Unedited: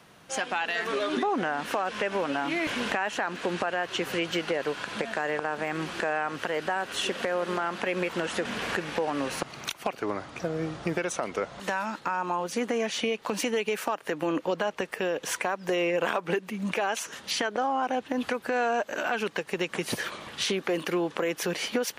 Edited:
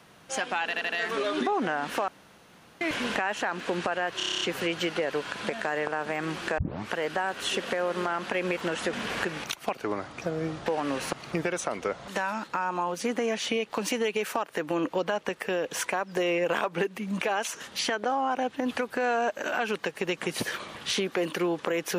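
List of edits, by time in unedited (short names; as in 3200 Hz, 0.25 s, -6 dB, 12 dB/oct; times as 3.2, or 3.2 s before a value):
0.65 stutter 0.08 s, 4 plays
1.84–2.57 room tone
3.93 stutter 0.03 s, 9 plays
6.1 tape start 0.34 s
8.96–9.62 move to 10.84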